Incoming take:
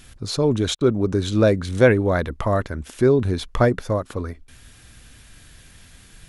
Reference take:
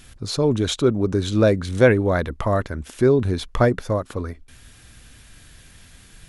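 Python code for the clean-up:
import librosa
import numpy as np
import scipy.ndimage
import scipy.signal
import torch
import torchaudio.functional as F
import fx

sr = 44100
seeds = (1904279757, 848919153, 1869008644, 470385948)

y = fx.fix_interpolate(x, sr, at_s=(0.75,), length_ms=56.0)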